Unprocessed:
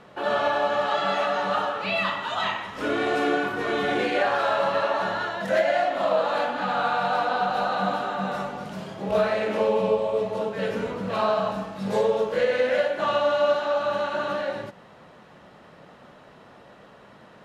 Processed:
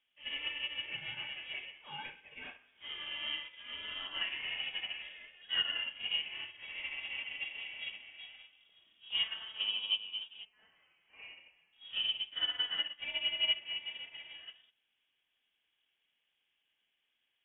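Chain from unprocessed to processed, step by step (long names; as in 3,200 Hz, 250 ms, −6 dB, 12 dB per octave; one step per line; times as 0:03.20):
0:10.45–0:11.73: high-pass filter 1,000 Hz 12 dB per octave
voice inversion scrambler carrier 3,500 Hz
expander for the loud parts 2.5 to 1, over −33 dBFS
level −8.5 dB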